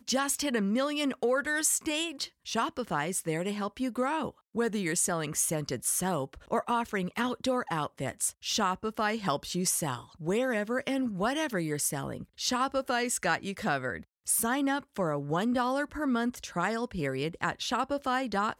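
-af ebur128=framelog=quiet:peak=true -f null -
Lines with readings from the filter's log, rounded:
Integrated loudness:
  I:         -30.3 LUFS
  Threshold: -40.3 LUFS
Loudness range:
  LRA:         1.2 LU
  Threshold: -50.4 LUFS
  LRA low:   -31.0 LUFS
  LRA high:  -29.8 LUFS
True peak:
  Peak:      -13.8 dBFS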